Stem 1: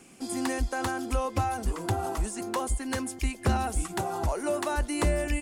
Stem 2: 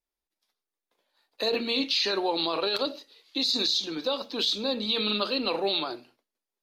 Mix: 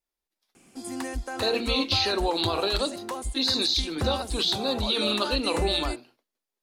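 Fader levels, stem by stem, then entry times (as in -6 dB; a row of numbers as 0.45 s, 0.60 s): -3.5 dB, +1.0 dB; 0.55 s, 0.00 s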